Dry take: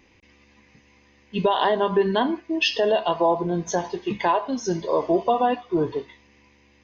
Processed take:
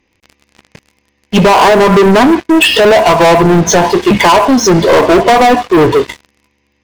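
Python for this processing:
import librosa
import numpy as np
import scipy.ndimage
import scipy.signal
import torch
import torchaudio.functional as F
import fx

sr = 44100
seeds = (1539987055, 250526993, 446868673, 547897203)

y = fx.env_lowpass_down(x, sr, base_hz=1500.0, full_db=-16.5)
y = fx.leveller(y, sr, passes=5)
y = y * 10.0 ** (7.0 / 20.0)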